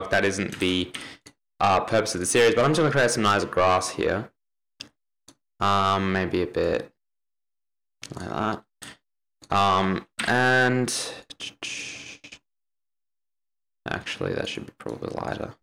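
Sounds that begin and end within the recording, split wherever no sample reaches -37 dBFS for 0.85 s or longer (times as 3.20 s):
8.03–12.35 s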